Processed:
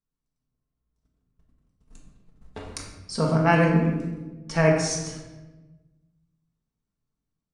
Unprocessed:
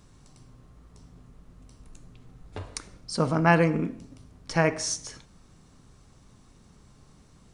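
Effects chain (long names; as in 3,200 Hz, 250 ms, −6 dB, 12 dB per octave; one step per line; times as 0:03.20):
noise gate −45 dBFS, range −33 dB
automatic gain control gain up to 3 dB
rectangular room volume 680 cubic metres, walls mixed, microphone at 1.6 metres
level −4.5 dB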